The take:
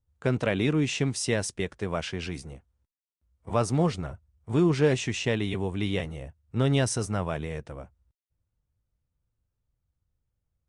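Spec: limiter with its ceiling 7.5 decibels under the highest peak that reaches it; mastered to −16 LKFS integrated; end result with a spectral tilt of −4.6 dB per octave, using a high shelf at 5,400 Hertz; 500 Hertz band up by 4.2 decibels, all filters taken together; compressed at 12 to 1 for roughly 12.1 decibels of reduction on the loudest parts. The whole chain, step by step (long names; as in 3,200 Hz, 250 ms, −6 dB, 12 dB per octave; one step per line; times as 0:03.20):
parametric band 500 Hz +5 dB
high-shelf EQ 5,400 Hz +7 dB
downward compressor 12 to 1, threshold −25 dBFS
level +17 dB
brickwall limiter −4.5 dBFS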